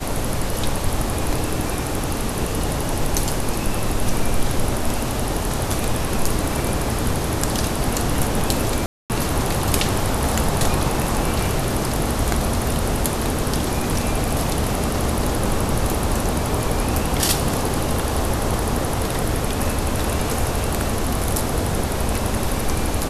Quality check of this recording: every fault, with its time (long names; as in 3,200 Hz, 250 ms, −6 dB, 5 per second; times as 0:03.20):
0:08.86–0:09.10: drop-out 238 ms